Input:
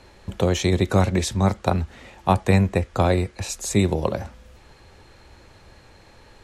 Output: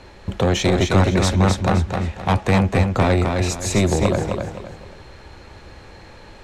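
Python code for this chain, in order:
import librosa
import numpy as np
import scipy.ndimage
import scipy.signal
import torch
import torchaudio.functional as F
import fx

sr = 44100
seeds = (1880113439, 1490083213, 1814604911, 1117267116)

p1 = fx.high_shelf(x, sr, hz=8300.0, db=-11.5)
p2 = 10.0 ** (-18.0 / 20.0) * np.tanh(p1 / 10.0 ** (-18.0 / 20.0))
p3 = p2 + fx.echo_feedback(p2, sr, ms=260, feedback_pct=32, wet_db=-4.5, dry=0)
y = p3 * librosa.db_to_amplitude(6.5)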